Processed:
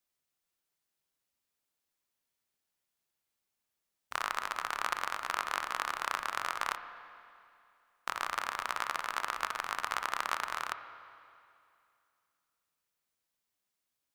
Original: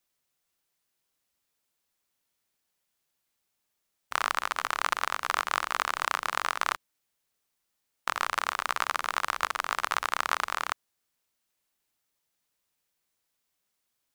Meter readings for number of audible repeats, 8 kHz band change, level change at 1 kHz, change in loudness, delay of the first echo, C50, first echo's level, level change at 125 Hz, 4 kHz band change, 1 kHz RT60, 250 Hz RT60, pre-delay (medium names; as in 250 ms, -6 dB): no echo, -6.0 dB, -5.5 dB, -5.5 dB, no echo, 10.0 dB, no echo, no reading, -6.0 dB, 2.5 s, 2.5 s, 23 ms